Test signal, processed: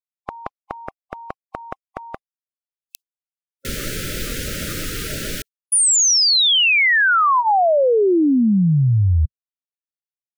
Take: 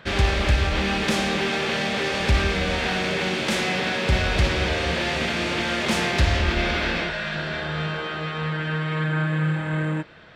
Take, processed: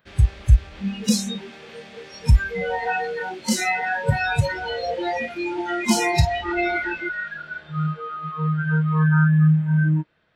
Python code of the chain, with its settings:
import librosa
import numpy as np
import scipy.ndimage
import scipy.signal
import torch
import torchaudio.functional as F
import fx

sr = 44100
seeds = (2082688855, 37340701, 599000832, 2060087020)

y = fx.noise_reduce_blind(x, sr, reduce_db=27)
y = F.gain(torch.from_numpy(y), 8.5).numpy()